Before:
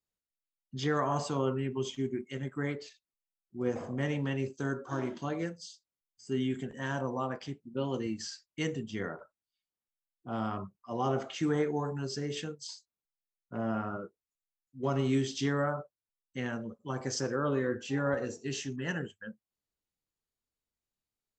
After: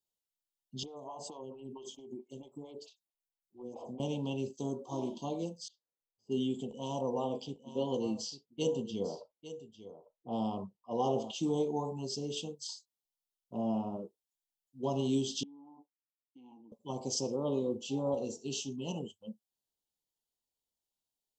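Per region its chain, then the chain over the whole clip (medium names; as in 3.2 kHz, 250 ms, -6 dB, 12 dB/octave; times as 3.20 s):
0.83–4.00 s: compression 12:1, threshold -35 dBFS + lamp-driven phase shifter 4.5 Hz
5.68–11.31 s: level-controlled noise filter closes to 1.2 kHz, open at -31 dBFS + peaking EQ 480 Hz +8.5 dB 0.22 oct + delay 850 ms -13 dB
15.43–16.72 s: vowel filter u + comb 3.9 ms, depth 30% + compression 10:1, threshold -48 dBFS
whole clip: dynamic bell 210 Hz, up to +7 dB, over -50 dBFS, Q 2.8; Chebyshev band-stop 940–3000 Hz, order 3; bass shelf 300 Hz -10.5 dB; trim +2 dB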